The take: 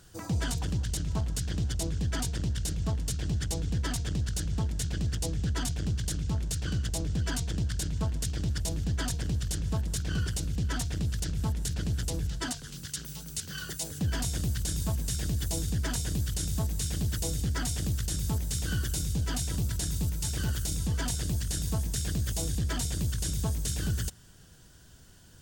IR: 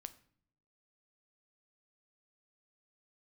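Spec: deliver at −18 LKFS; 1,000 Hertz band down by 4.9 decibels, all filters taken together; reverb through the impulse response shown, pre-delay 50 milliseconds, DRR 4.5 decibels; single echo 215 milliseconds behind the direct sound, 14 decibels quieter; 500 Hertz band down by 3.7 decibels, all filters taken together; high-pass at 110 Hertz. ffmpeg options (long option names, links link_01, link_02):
-filter_complex "[0:a]highpass=110,equalizer=frequency=500:width_type=o:gain=-3.5,equalizer=frequency=1000:width_type=o:gain=-5.5,aecho=1:1:215:0.2,asplit=2[link_01][link_02];[1:a]atrim=start_sample=2205,adelay=50[link_03];[link_02][link_03]afir=irnorm=-1:irlink=0,volume=1dB[link_04];[link_01][link_04]amix=inputs=2:normalize=0,volume=14.5dB"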